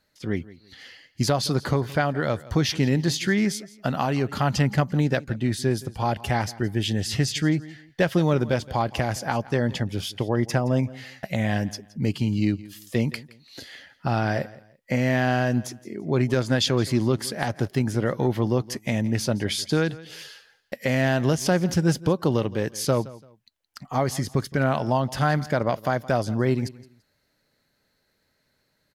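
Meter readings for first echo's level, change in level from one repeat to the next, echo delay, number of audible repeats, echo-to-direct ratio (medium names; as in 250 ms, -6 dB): -19.5 dB, -11.5 dB, 169 ms, 2, -19.0 dB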